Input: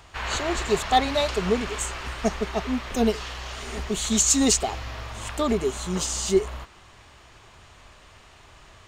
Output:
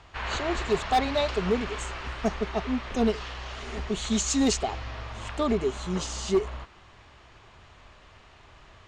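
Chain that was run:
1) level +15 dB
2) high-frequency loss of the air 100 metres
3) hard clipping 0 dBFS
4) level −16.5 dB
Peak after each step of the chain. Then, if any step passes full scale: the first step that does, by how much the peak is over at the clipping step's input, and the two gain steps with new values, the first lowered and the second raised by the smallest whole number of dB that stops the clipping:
+7.5, +6.5, 0.0, −16.5 dBFS
step 1, 6.5 dB
step 1 +8 dB, step 4 −9.5 dB

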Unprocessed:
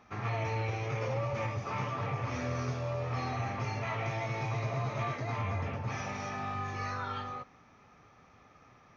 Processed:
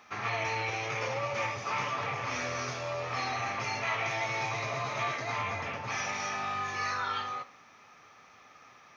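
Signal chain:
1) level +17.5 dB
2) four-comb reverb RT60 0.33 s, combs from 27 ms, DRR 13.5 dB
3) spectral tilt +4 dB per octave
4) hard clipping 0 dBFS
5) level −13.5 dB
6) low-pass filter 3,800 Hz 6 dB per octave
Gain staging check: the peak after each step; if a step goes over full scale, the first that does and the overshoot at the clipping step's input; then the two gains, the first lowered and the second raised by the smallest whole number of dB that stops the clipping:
−5.5, −5.5, −5.0, −5.0, −18.5, −19.5 dBFS
no step passes full scale

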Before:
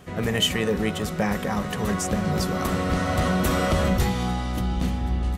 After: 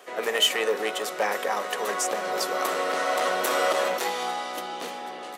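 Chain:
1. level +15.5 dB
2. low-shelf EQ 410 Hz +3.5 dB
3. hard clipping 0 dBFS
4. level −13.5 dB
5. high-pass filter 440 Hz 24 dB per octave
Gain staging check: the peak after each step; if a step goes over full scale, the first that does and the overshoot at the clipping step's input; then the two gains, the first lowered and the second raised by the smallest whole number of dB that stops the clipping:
+5.0, +6.0, 0.0, −13.5, −10.0 dBFS
step 1, 6.0 dB
step 1 +9.5 dB, step 4 −7.5 dB

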